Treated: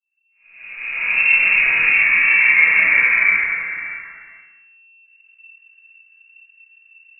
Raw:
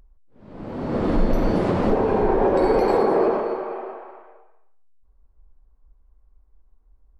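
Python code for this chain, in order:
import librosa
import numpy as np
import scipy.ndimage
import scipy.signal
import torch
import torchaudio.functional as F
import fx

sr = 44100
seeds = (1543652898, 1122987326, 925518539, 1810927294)

p1 = fx.fade_in_head(x, sr, length_s=1.4)
p2 = fx.freq_invert(p1, sr, carrier_hz=2700)
p3 = p2 + fx.room_early_taps(p2, sr, ms=(32, 51), db=(-6.0, -9.5), dry=0)
p4 = fx.room_shoebox(p3, sr, seeds[0], volume_m3=53.0, walls='mixed', distance_m=1.8)
p5 = fx.end_taper(p4, sr, db_per_s=230.0)
y = p5 * librosa.db_to_amplitude(-7.0)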